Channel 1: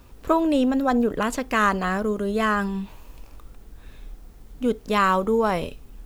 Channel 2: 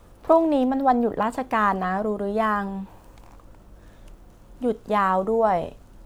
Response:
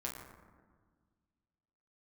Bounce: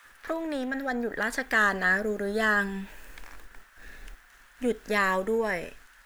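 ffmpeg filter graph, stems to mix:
-filter_complex "[0:a]dynaudnorm=f=300:g=7:m=11.5dB,volume=-9dB[a];[1:a]acompressor=threshold=-22dB:ratio=6,highpass=f=1.7k:t=q:w=4.4,volume=3dB,asplit=2[b][c];[c]apad=whole_len=267066[d];[a][d]sidechaingate=range=-33dB:threshold=-54dB:ratio=16:detection=peak[e];[e][b]amix=inputs=2:normalize=0,equalizer=f=81:w=0.51:g=-12"

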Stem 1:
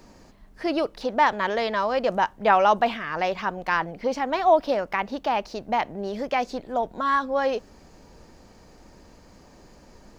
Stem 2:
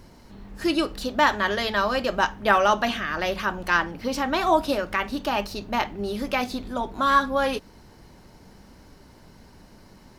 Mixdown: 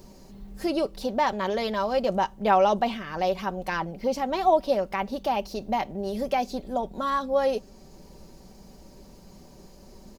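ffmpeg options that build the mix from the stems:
-filter_complex "[0:a]volume=0.5dB,asplit=2[a][b];[1:a]highshelf=f=11k:g=10,volume=-5dB[c];[b]apad=whole_len=449068[d];[c][d]sidechaincompress=threshold=-28dB:ratio=8:attack=8.6:release=649[e];[a][e]amix=inputs=2:normalize=0,equalizer=f=1.6k:t=o:w=1.7:g=-9.5,aecho=1:1:5.2:0.45"

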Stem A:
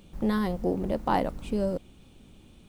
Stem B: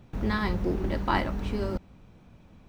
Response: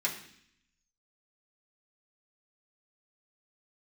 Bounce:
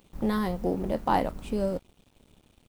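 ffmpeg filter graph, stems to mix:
-filter_complex "[0:a]equalizer=f=860:t=o:w=0.77:g=2.5,volume=-0.5dB[a];[1:a]adelay=21,volume=-15.5dB[b];[a][b]amix=inputs=2:normalize=0,highshelf=f=9.6k:g=6,aeval=exprs='sgn(val(0))*max(abs(val(0))-0.00211,0)':c=same"

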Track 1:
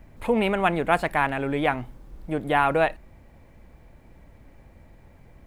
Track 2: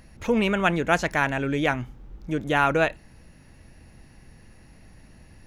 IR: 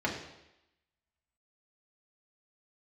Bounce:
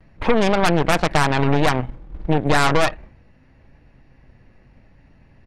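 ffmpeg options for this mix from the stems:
-filter_complex "[0:a]agate=range=-33dB:threshold=-38dB:ratio=3:detection=peak,acontrast=29,volume=1.5dB[a];[1:a]flanger=delay=6.9:depth=1.4:regen=68:speed=0.78:shape=triangular,adelay=6.2,volume=-1dB[b];[a][b]amix=inputs=2:normalize=0,lowpass=3.1k,aeval=exprs='0.841*(cos(1*acos(clip(val(0)/0.841,-1,1)))-cos(1*PI/2))+0.0596*(cos(5*acos(clip(val(0)/0.841,-1,1)))-cos(5*PI/2))+0.266*(cos(8*acos(clip(val(0)/0.841,-1,1)))-cos(8*PI/2))':c=same,acompressor=threshold=-13dB:ratio=3"

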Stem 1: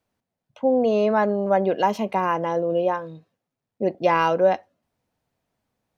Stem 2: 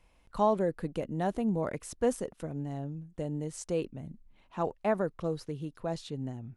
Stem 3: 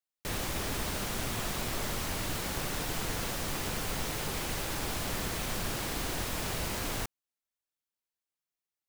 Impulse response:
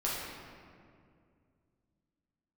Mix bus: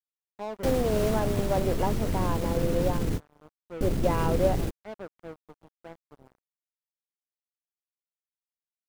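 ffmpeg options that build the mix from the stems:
-filter_complex "[0:a]volume=-14.5dB,asplit=2[a][b];[1:a]asoftclip=type=tanh:threshold=-18.5dB,volume=-12.5dB[c];[2:a]asubboost=boost=11:cutoff=250,alimiter=limit=-14.5dB:level=0:latency=1:release=18,volume=1dB[d];[b]apad=whole_len=391885[e];[d][e]sidechaingate=range=-33dB:threshold=-53dB:ratio=16:detection=peak[f];[c][f]amix=inputs=2:normalize=0,alimiter=limit=-20dB:level=0:latency=1:release=404,volume=0dB[g];[a][g]amix=inputs=2:normalize=0,equalizer=f=420:t=o:w=2.4:g=9.5,aeval=exprs='sgn(val(0))*max(abs(val(0))-0.0119,0)':c=same"

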